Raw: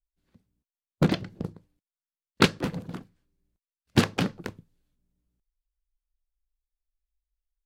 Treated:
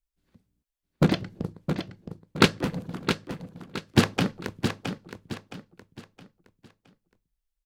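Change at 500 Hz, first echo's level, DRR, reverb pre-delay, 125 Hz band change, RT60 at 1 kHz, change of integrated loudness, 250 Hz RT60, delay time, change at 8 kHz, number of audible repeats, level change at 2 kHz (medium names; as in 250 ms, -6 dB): +2.5 dB, -7.5 dB, no reverb, no reverb, +2.5 dB, no reverb, -0.5 dB, no reverb, 667 ms, +2.5 dB, 4, +2.5 dB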